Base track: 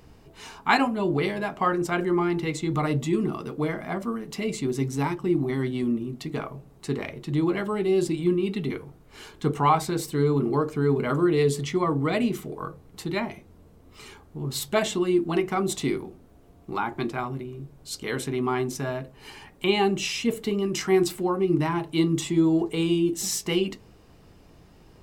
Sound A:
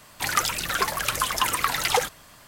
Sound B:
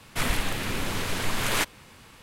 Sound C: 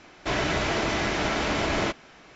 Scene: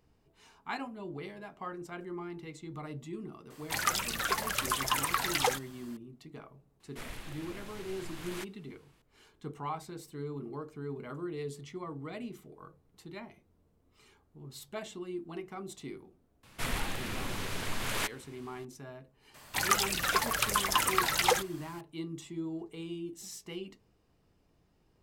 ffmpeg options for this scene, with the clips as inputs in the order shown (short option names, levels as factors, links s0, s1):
-filter_complex "[1:a]asplit=2[s0][s1];[2:a]asplit=2[s2][s3];[0:a]volume=0.141[s4];[s3]acontrast=56[s5];[s0]atrim=end=2.47,asetpts=PTS-STARTPTS,volume=0.473,afade=t=in:d=0.004:c=hsin,afade=t=out:st=2.466:d=0.004:c=hsin,adelay=3500[s6];[s2]atrim=end=2.22,asetpts=PTS-STARTPTS,volume=0.126,afade=t=in:d=0.004:c=hsin,afade=t=out:st=2.216:d=0.004:c=hsin,adelay=6800[s7];[s5]atrim=end=2.22,asetpts=PTS-STARTPTS,volume=0.211,afade=t=in:d=0.004:c=hsin,afade=t=out:st=2.216:d=0.004:c=hsin,adelay=16430[s8];[s1]atrim=end=2.47,asetpts=PTS-STARTPTS,volume=0.631,afade=t=in:d=0.004:c=hsin,afade=t=out:st=2.466:d=0.004:c=hsin,adelay=19340[s9];[s4][s6][s7][s8][s9]amix=inputs=5:normalize=0"